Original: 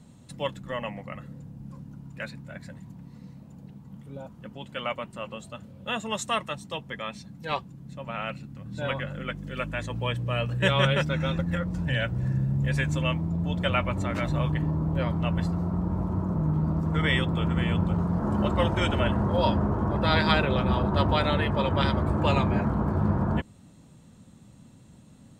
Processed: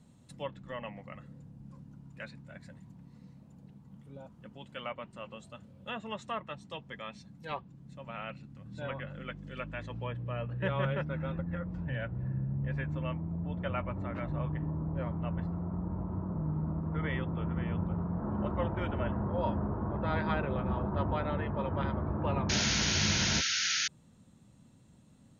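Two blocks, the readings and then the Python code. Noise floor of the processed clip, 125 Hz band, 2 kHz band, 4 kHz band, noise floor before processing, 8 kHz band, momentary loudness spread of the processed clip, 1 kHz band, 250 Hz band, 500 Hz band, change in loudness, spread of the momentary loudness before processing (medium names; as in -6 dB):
-59 dBFS, -8.0 dB, -7.0 dB, -3.0 dB, -52 dBFS, no reading, 21 LU, -8.5 dB, -8.0 dB, -8.0 dB, -7.0 dB, 19 LU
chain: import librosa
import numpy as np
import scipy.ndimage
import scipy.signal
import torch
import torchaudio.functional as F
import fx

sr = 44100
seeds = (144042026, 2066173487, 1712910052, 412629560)

y = fx.env_lowpass_down(x, sr, base_hz=1700.0, full_db=-24.0)
y = fx.spec_paint(y, sr, seeds[0], shape='noise', start_s=22.49, length_s=1.39, low_hz=1300.0, high_hz=6800.0, level_db=-23.0)
y = y * librosa.db_to_amplitude(-8.0)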